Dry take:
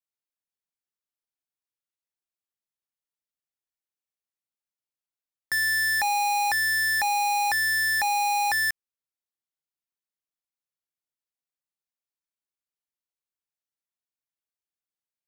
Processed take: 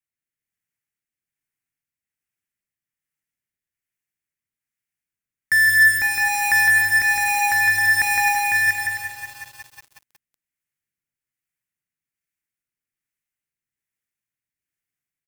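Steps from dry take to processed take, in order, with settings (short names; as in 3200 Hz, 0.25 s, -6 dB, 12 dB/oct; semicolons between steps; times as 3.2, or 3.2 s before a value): notch 660 Hz, Q 18; rotary speaker horn 1.2 Hz; graphic EQ 125/500/1000/2000/4000 Hz +6/-7/-8/+9/-11 dB; on a send: bouncing-ball echo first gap 0.16 s, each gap 0.65×, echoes 5; on the sum: lo-fi delay 0.183 s, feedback 80%, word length 7-bit, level -11.5 dB; gain +7 dB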